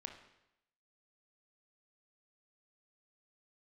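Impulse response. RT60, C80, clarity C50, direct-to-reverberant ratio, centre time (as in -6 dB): 0.85 s, 10.5 dB, 7.5 dB, 4.5 dB, 21 ms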